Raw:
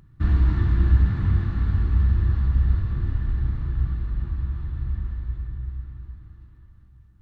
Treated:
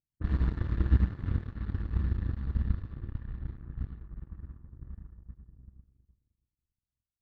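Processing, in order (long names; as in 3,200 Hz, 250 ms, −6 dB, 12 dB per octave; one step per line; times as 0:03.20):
power curve on the samples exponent 2
low-pass that shuts in the quiet parts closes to 620 Hz, open at −24.5 dBFS
level −3.5 dB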